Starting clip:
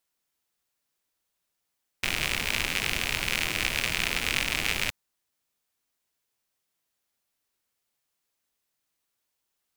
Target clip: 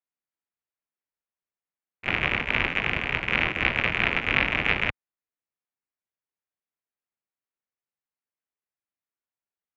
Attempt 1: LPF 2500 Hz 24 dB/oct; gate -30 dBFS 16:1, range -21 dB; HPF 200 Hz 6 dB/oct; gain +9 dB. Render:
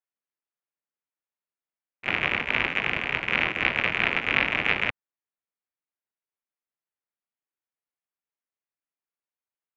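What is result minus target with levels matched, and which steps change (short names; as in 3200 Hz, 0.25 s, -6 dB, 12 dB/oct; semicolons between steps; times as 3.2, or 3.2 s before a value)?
125 Hz band -5.0 dB
change: HPF 52 Hz 6 dB/oct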